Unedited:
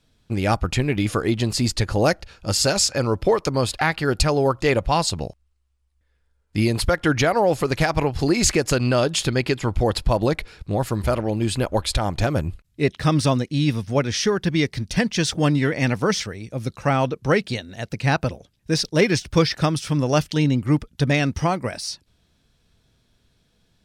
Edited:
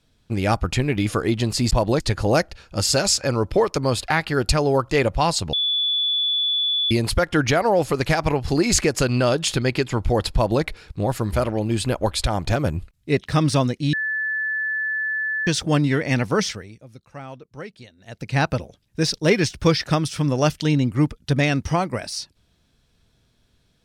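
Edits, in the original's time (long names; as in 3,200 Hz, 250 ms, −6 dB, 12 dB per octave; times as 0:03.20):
0:05.24–0:06.62: beep over 3,450 Hz −18.5 dBFS
0:10.05–0:10.34: duplicate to 0:01.71
0:13.64–0:15.18: beep over 1,740 Hz −21.5 dBFS
0:16.14–0:18.12: duck −17 dB, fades 0.43 s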